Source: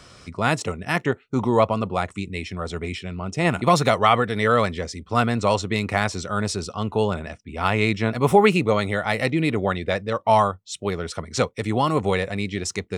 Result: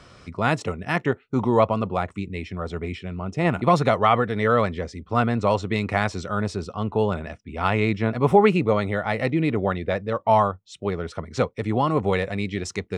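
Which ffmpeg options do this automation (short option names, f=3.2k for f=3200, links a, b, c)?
-af "asetnsamples=n=441:p=0,asendcmd='1.97 lowpass f 1800;5.62 lowpass f 3000;6.35 lowpass f 1700;7.08 lowpass f 3000;7.8 lowpass f 1700;12.13 lowpass f 3500',lowpass=f=2.9k:p=1"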